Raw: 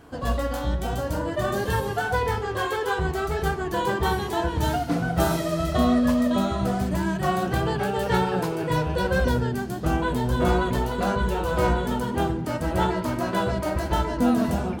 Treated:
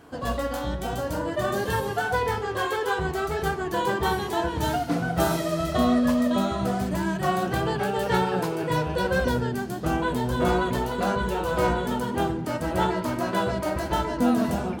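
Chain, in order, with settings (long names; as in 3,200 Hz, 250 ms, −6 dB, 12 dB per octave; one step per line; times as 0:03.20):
low-shelf EQ 71 Hz −11.5 dB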